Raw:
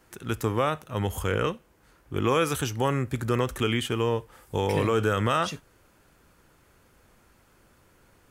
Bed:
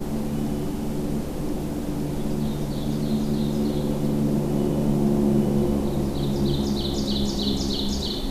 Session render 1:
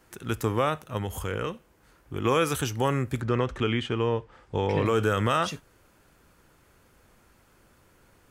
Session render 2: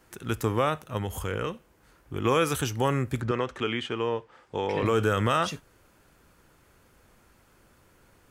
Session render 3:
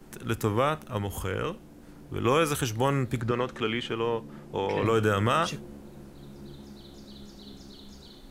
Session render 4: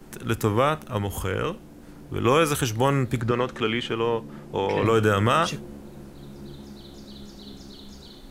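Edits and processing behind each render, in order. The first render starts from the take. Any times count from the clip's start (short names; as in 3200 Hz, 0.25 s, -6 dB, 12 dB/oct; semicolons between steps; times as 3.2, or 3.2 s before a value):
0.97–2.25 compressor 1.5:1, threshold -33 dBFS; 3.21–4.86 air absorption 140 m
3.31–4.83 HPF 320 Hz 6 dB/oct
add bed -22 dB
gain +4 dB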